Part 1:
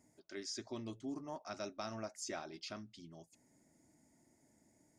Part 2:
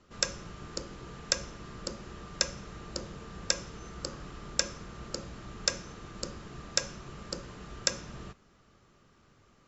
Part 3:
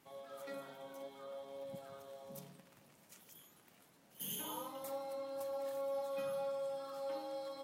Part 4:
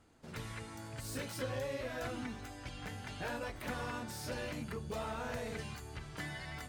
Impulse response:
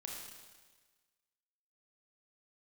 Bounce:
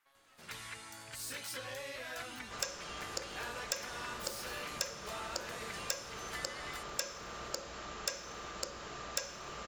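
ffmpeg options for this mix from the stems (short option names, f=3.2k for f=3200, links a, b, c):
-filter_complex "[1:a]equalizer=f=580:t=o:w=1.6:g=10,asoftclip=type=tanh:threshold=-20dB,aeval=exprs='val(0)+0.00447*(sin(2*PI*60*n/s)+sin(2*PI*2*60*n/s)/2+sin(2*PI*3*60*n/s)/3+sin(2*PI*4*60*n/s)/4+sin(2*PI*5*60*n/s)/5)':c=same,adelay=2400,volume=-3dB,asplit=2[a][b];[b]volume=-17.5dB[c];[2:a]equalizer=f=1.4k:t=o:w=1.5:g=13,acrossover=split=370|3000[d][e][f];[e]acompressor=threshold=-57dB:ratio=2.5[g];[d][g][f]amix=inputs=3:normalize=0,aeval=exprs='0.0316*(cos(1*acos(clip(val(0)/0.0316,-1,1)))-cos(1*PI/2))+0.0126*(cos(3*acos(clip(val(0)/0.0316,-1,1)))-cos(3*PI/2))+0.00501*(cos(4*acos(clip(val(0)/0.0316,-1,1)))-cos(4*PI/2))':c=same,volume=-5.5dB[h];[3:a]acontrast=36,adelay=150,volume=-9.5dB[i];[4:a]atrim=start_sample=2205[j];[c][j]afir=irnorm=-1:irlink=0[k];[a][h][i][k]amix=inputs=4:normalize=0,tiltshelf=f=710:g=-9,acompressor=threshold=-39dB:ratio=2"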